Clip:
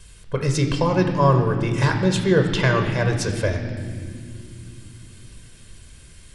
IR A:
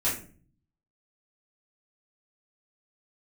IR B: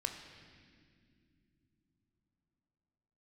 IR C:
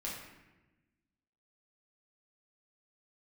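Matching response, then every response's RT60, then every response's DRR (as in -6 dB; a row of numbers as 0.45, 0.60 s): B; 0.40 s, not exponential, 1.1 s; -9.5, 4.0, -5.5 dB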